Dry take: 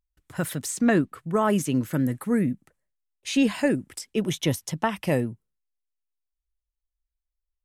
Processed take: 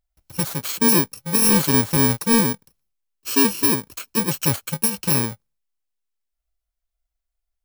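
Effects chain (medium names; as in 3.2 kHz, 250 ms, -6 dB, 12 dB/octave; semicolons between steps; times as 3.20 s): bit-reversed sample order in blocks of 64 samples; 1.42–2.41 s: waveshaping leveller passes 1; trim +4 dB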